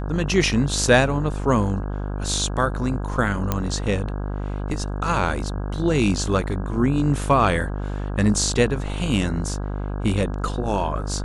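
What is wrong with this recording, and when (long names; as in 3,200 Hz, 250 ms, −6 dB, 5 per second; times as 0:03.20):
mains buzz 50 Hz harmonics 33 −27 dBFS
0:03.52: click −7 dBFS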